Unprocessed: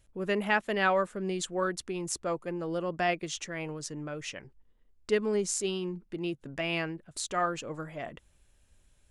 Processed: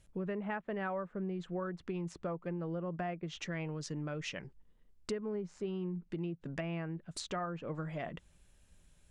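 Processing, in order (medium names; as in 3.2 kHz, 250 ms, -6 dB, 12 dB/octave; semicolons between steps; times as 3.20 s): low-pass that closes with the level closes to 1.6 kHz, closed at -29 dBFS; peaking EQ 170 Hz +8.5 dB 0.4 oct; compression 6:1, threshold -35 dBFS, peak gain reduction 13 dB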